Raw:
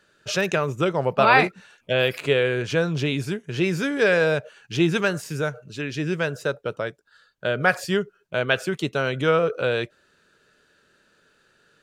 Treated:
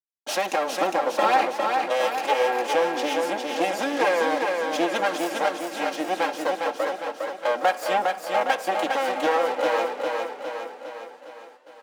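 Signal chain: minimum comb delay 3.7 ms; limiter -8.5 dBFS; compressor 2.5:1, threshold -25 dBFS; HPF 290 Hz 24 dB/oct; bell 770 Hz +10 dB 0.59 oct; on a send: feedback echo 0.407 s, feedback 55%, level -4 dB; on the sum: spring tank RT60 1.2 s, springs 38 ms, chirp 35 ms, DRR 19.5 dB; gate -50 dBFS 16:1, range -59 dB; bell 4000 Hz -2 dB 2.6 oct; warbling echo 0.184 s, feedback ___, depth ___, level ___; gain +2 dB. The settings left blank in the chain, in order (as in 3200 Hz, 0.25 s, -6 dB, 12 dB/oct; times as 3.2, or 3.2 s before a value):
52%, 195 cents, -17 dB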